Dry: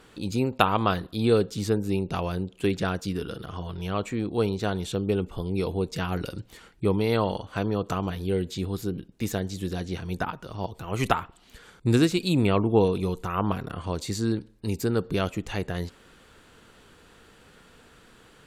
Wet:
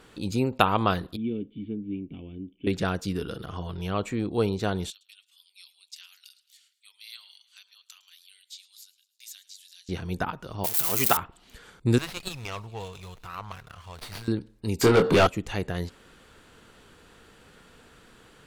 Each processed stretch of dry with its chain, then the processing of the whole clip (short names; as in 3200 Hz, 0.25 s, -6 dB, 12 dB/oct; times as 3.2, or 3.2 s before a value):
1.16–2.67 vocal tract filter i + doubler 14 ms -10.5 dB
4.9–9.89 ladder high-pass 2800 Hz, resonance 20% + feedback echo 0.108 s, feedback 55%, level -19.5 dB
10.64–11.17 switching spikes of -19.5 dBFS + HPF 230 Hz 6 dB/oct + high shelf 10000 Hz +11 dB
11.98–14.28 passive tone stack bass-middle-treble 10-0-10 + thin delay 0.265 s, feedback 57%, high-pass 3100 Hz, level -20 dB + running maximum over 5 samples
14.81–15.27 overdrive pedal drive 28 dB, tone 2900 Hz, clips at -10.5 dBFS + doubler 24 ms -6 dB
whole clip: dry